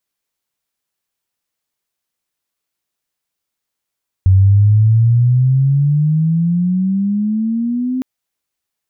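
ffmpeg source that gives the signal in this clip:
-f lavfi -i "aevalsrc='pow(10,(-5.5-10*t/3.76)/20)*sin(2*PI*93*3.76/log(260/93)*(exp(log(260/93)*t/3.76)-1))':d=3.76:s=44100"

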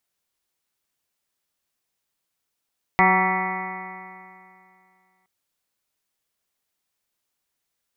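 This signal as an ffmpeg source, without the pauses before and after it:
-f lavfi -i "aevalsrc='0.0794*pow(10,-3*t/2.48)*sin(2*PI*185.13*t)+0.0562*pow(10,-3*t/2.48)*sin(2*PI*371.03*t)+0.0178*pow(10,-3*t/2.48)*sin(2*PI*558.49*t)+0.119*pow(10,-3*t/2.48)*sin(2*PI*748.24*t)+0.112*pow(10,-3*t/2.48)*sin(2*PI*941.05*t)+0.0841*pow(10,-3*t/2.48)*sin(2*PI*1137.63*t)+0.0447*pow(10,-3*t/2.48)*sin(2*PI*1338.68*t)+0.00841*pow(10,-3*t/2.48)*sin(2*PI*1544.88*t)+0.0282*pow(10,-3*t/2.48)*sin(2*PI*1756.87*t)+0.126*pow(10,-3*t/2.48)*sin(2*PI*1975.26*t)+0.0708*pow(10,-3*t/2.48)*sin(2*PI*2200.62*t)+0.015*pow(10,-3*t/2.48)*sin(2*PI*2433.51*t)':d=2.27:s=44100"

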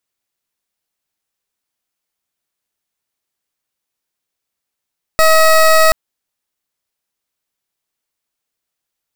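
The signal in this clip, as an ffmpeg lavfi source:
-f lavfi -i "aevalsrc='0.376*(2*lt(mod(638*t,1),0.2)-1)':d=0.73:s=44100"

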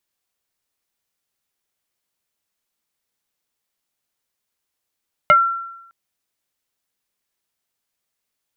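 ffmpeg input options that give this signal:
-f lavfi -i "aevalsrc='0.501*pow(10,-3*t/0.88)*sin(2*PI*1360*t+1.3*pow(10,-3*t/0.13)*sin(2*PI*0.56*1360*t))':d=0.61:s=44100"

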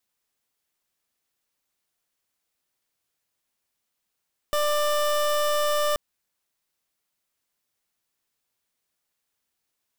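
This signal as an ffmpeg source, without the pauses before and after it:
-f lavfi -i "aevalsrc='0.0708*(2*lt(mod(593*t,1),0.27)-1)':d=1.43:s=44100"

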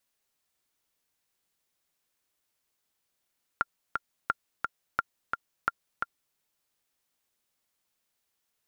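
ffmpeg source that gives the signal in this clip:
-f lavfi -i "aevalsrc='pow(10,(-11.5-4*gte(mod(t,2*60/174),60/174))/20)*sin(2*PI*1390*mod(t,60/174))*exp(-6.91*mod(t,60/174)/0.03)':d=2.75:s=44100"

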